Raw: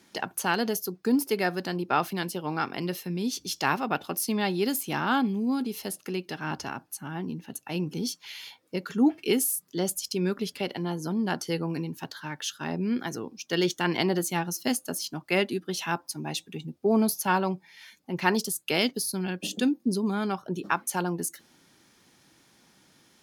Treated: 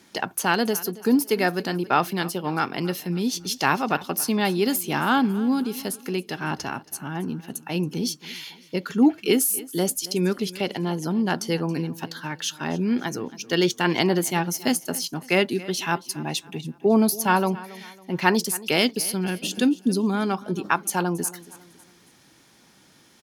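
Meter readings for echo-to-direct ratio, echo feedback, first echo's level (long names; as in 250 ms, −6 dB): −18.5 dB, 39%, −19.0 dB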